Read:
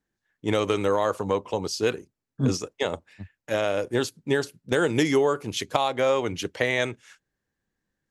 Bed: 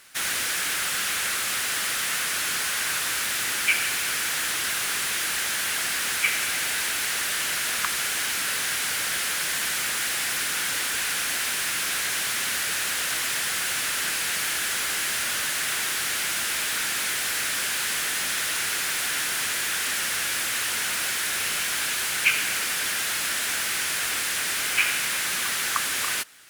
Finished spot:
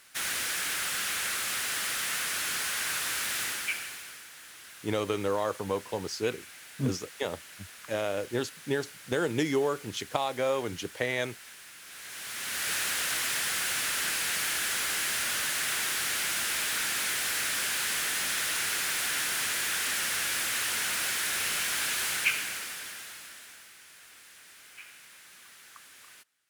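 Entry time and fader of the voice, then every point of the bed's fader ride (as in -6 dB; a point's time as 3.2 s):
4.40 s, -6.0 dB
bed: 3.43 s -5 dB
4.29 s -22 dB
11.81 s -22 dB
12.7 s -3.5 dB
22.11 s -3.5 dB
23.75 s -26 dB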